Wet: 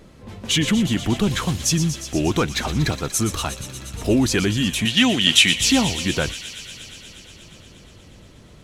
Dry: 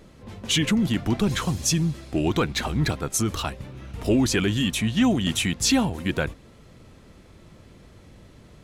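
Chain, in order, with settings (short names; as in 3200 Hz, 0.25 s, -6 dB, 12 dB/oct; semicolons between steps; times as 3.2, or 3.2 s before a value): 4.85–5.54 weighting filter D; on a send: thin delay 0.119 s, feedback 83%, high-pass 2500 Hz, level -10 dB; on the sum: gain +2.5 dB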